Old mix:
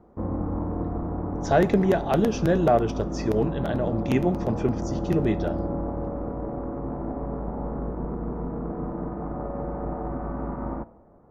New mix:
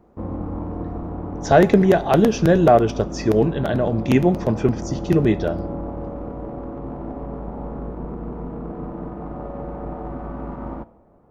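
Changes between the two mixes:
speech +6.5 dB; background: remove LPF 2000 Hz 24 dB/oct

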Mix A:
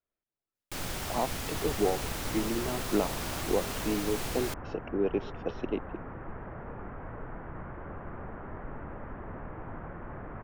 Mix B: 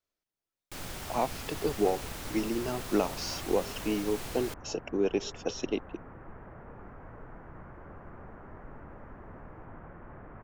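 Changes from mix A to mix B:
speech: remove air absorption 390 m; first sound -4.5 dB; second sound -6.0 dB

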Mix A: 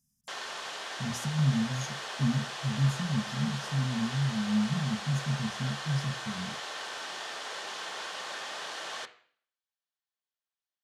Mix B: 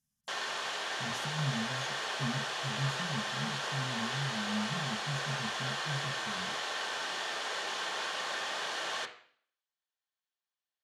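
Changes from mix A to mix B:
speech -8.5 dB; background: send +6.0 dB

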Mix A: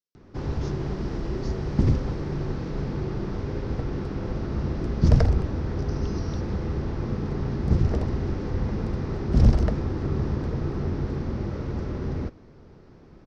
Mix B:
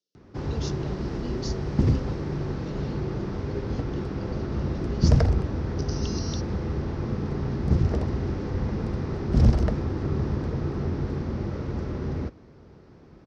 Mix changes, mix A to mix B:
speech +11.0 dB; master: add HPF 44 Hz

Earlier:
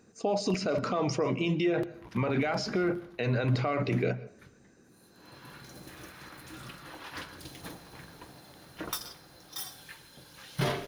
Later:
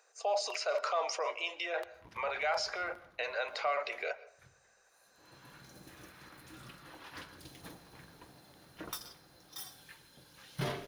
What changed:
speech: add steep high-pass 560 Hz 36 dB/oct; background -6.5 dB

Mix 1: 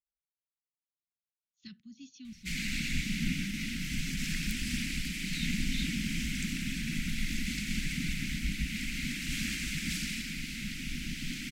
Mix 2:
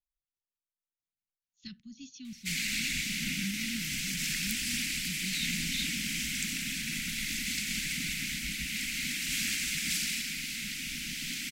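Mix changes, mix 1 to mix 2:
speech: remove HPF 500 Hz 6 dB/oct; master: add tilt +2.5 dB/oct

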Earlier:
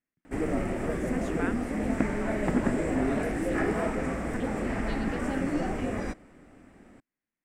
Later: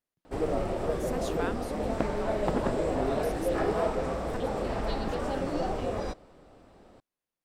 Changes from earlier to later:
speech: remove LPF 2600 Hz 6 dB/oct; master: add graphic EQ 250/500/1000/2000/4000/8000 Hz -8/+5/+4/-11/+11/-6 dB

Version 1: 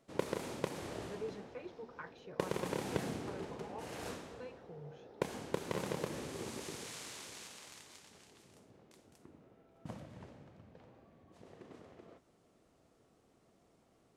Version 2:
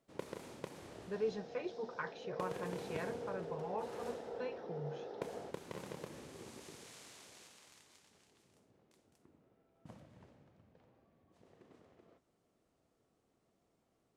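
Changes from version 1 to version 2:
speech +6.5 dB; first sound -8.5 dB; second sound +10.0 dB

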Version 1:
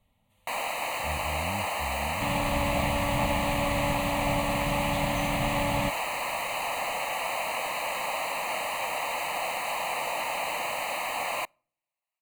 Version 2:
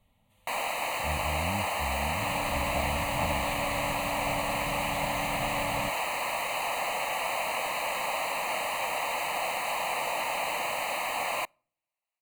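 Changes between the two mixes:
speech: send +7.5 dB; second sound -7.0 dB

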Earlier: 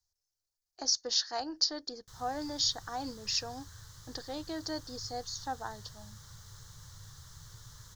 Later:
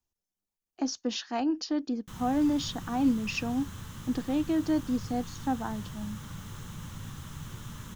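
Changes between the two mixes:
background +8.5 dB; master: remove EQ curve 120 Hz 0 dB, 230 Hz -22 dB, 440 Hz -4 dB, 1200 Hz -3 dB, 1800 Hz 0 dB, 2600 Hz -13 dB, 4500 Hz +12 dB, 9400 Hz +1 dB

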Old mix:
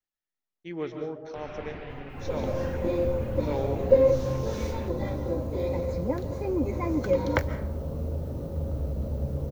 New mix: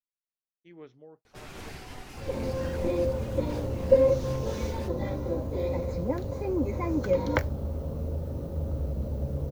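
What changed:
speech -11.5 dB; first sound: remove LPF 2800 Hz 24 dB/oct; reverb: off

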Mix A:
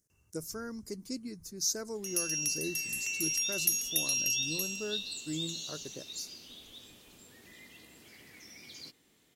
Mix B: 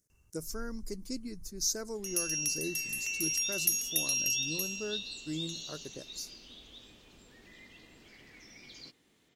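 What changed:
first sound: remove HPF 67 Hz 24 dB/oct; second sound: add running mean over 4 samples

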